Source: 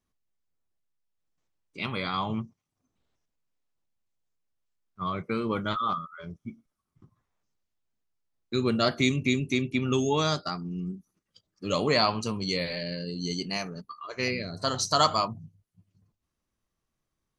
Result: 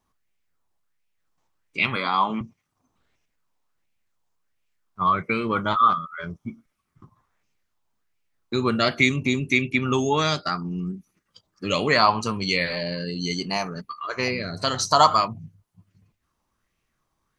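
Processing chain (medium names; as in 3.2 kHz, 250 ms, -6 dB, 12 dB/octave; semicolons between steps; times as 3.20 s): 1.96–2.41 s: Chebyshev high-pass 210 Hz, order 3; in parallel at 0 dB: compression, threshold -34 dBFS, peak gain reduction 16 dB; on the sum: sweeping bell 1.4 Hz 880–2500 Hz +11 dB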